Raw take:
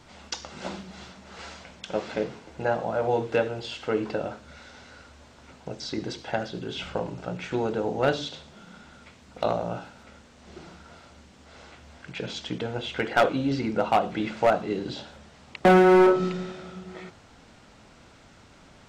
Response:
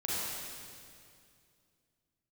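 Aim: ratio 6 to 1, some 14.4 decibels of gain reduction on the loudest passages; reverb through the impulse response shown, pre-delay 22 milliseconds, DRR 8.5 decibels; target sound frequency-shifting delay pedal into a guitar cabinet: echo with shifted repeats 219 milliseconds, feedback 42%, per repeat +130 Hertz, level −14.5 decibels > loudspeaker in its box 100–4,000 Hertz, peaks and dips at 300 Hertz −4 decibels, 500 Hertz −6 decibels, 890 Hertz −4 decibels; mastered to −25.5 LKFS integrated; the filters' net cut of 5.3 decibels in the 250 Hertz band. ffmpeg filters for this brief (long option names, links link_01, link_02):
-filter_complex "[0:a]equalizer=frequency=250:width_type=o:gain=-6,acompressor=threshold=-32dB:ratio=6,asplit=2[link_01][link_02];[1:a]atrim=start_sample=2205,adelay=22[link_03];[link_02][link_03]afir=irnorm=-1:irlink=0,volume=-14.5dB[link_04];[link_01][link_04]amix=inputs=2:normalize=0,asplit=5[link_05][link_06][link_07][link_08][link_09];[link_06]adelay=219,afreqshift=130,volume=-14.5dB[link_10];[link_07]adelay=438,afreqshift=260,volume=-22dB[link_11];[link_08]adelay=657,afreqshift=390,volume=-29.6dB[link_12];[link_09]adelay=876,afreqshift=520,volume=-37.1dB[link_13];[link_05][link_10][link_11][link_12][link_13]amix=inputs=5:normalize=0,highpass=100,equalizer=frequency=300:width_type=q:width=4:gain=-4,equalizer=frequency=500:width_type=q:width=4:gain=-6,equalizer=frequency=890:width_type=q:width=4:gain=-4,lowpass=frequency=4000:width=0.5412,lowpass=frequency=4000:width=1.3066,volume=14dB"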